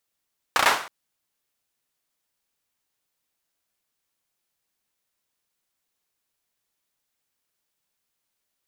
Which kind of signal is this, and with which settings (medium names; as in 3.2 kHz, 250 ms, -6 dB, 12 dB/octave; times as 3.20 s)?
hand clap length 0.32 s, bursts 4, apart 33 ms, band 1.1 kHz, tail 0.46 s